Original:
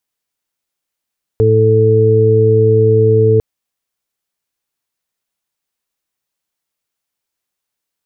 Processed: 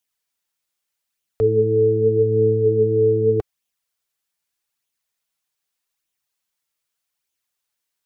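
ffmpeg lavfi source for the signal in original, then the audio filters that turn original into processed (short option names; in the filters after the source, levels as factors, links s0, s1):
-f lavfi -i "aevalsrc='0.282*sin(2*PI*110*t)+0.0708*sin(2*PI*220*t)+0.075*sin(2*PI*330*t)+0.355*sin(2*PI*440*t)':d=2:s=44100"
-filter_complex "[0:a]tiltshelf=f=730:g=-4,acrossover=split=150[s0][s1];[s0]alimiter=limit=0.0631:level=0:latency=1[s2];[s1]flanger=delay=0.3:depth=6.3:regen=35:speed=0.82:shape=sinusoidal[s3];[s2][s3]amix=inputs=2:normalize=0"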